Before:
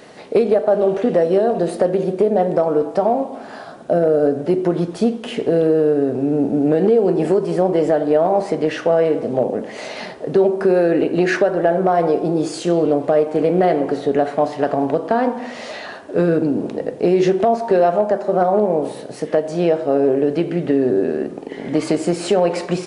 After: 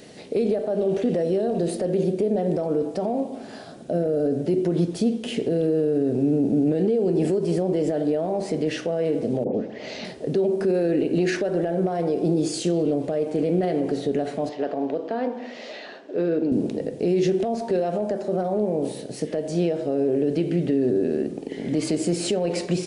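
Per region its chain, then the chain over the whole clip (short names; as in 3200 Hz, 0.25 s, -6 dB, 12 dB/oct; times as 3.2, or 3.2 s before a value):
9.44–10.05 LPF 5400 Hz 24 dB/oct + dispersion highs, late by 0.109 s, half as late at 1600 Hz
14.49–16.52 HPF 320 Hz + air absorption 160 m
whole clip: limiter -12 dBFS; bell 1100 Hz -14 dB 1.8 oct; gain +1.5 dB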